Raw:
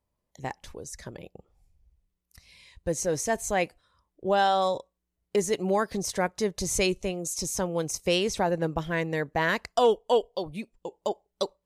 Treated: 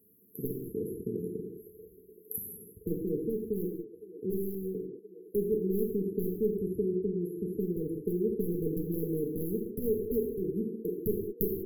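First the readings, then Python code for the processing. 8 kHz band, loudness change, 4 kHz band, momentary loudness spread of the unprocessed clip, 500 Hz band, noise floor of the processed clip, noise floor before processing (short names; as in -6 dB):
-18.5 dB, -6.0 dB, under -40 dB, 15 LU, -4.0 dB, -58 dBFS, -82 dBFS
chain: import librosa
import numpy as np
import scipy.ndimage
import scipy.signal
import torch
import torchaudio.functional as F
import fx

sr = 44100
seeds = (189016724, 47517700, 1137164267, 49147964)

y = fx.high_shelf(x, sr, hz=4900.0, db=8.5)
y = fx.rider(y, sr, range_db=4, speed_s=0.5)
y = scipy.signal.sosfilt(scipy.signal.butter(2, 280.0, 'highpass', fs=sr, output='sos'), y)
y = fx.peak_eq(y, sr, hz=2200.0, db=3.5, octaves=0.42)
y = fx.echo_wet_bandpass(y, sr, ms=511, feedback_pct=76, hz=1500.0, wet_db=-15.0)
y = fx.env_lowpass_down(y, sr, base_hz=1200.0, full_db=-25.5)
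y = 10.0 ** (-20.5 / 20.0) * (np.abs((y / 10.0 ** (-20.5 / 20.0) + 3.0) % 4.0 - 2.0) - 1.0)
y = fx.brickwall_bandstop(y, sr, low_hz=460.0, high_hz=11000.0)
y = fx.rev_gated(y, sr, seeds[0], gate_ms=230, shape='falling', drr_db=0.0)
y = fx.spectral_comp(y, sr, ratio=2.0)
y = F.gain(torch.from_numpy(y), 4.5).numpy()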